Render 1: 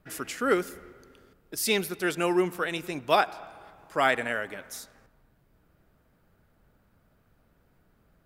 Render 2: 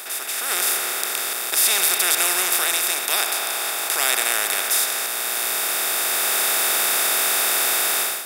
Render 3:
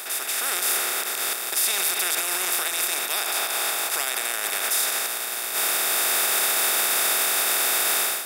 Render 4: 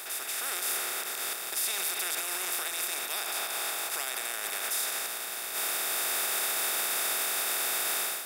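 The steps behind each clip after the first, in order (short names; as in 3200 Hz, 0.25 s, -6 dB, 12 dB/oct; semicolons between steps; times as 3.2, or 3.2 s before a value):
per-bin compression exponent 0.2; differentiator; AGC gain up to 15.5 dB; gain -1 dB
limiter -12 dBFS, peak gain reduction 10 dB
zero-crossing step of -36.5 dBFS; gain -8.5 dB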